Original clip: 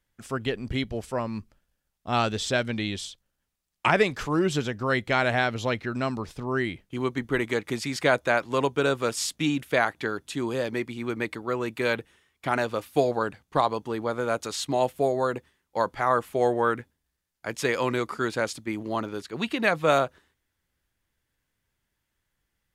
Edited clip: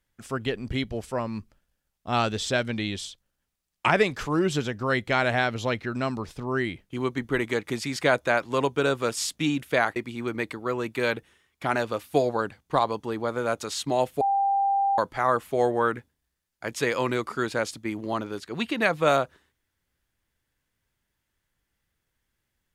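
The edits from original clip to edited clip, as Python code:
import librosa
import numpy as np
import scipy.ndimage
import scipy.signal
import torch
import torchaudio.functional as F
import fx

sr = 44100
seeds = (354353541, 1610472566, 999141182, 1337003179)

y = fx.edit(x, sr, fx.cut(start_s=9.96, length_s=0.82),
    fx.bleep(start_s=15.03, length_s=0.77, hz=792.0, db=-20.0), tone=tone)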